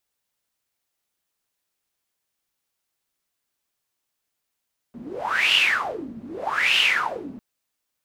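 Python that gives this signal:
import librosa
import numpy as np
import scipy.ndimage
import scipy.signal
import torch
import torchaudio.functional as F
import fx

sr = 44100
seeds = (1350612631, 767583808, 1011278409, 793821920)

y = fx.wind(sr, seeds[0], length_s=2.45, low_hz=220.0, high_hz=2900.0, q=10.0, gusts=2, swing_db=19.5)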